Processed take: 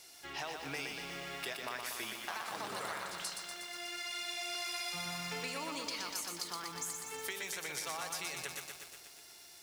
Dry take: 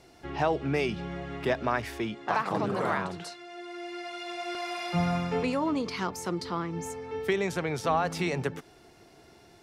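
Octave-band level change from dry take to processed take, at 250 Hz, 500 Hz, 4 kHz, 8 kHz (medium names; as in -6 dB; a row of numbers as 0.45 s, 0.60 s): -18.5 dB, -16.0 dB, +1.0 dB, +5.0 dB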